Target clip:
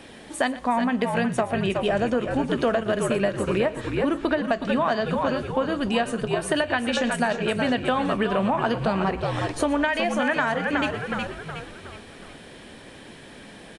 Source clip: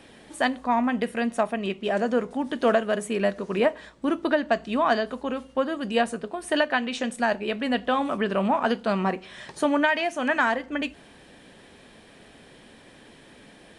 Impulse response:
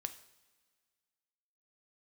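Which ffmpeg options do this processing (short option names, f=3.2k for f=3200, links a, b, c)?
-filter_complex "[0:a]asplit=2[a][b];[b]asplit=5[c][d][e][f][g];[c]adelay=367,afreqshift=-67,volume=-8dB[h];[d]adelay=734,afreqshift=-134,volume=-14.9dB[i];[e]adelay=1101,afreqshift=-201,volume=-21.9dB[j];[f]adelay=1468,afreqshift=-268,volume=-28.8dB[k];[g]adelay=1835,afreqshift=-335,volume=-35.7dB[l];[h][i][j][k][l]amix=inputs=5:normalize=0[m];[a][m]amix=inputs=2:normalize=0,acompressor=threshold=-25dB:ratio=6,asplit=2[n][o];[o]aecho=0:1:119:0.133[p];[n][p]amix=inputs=2:normalize=0,volume=5.5dB"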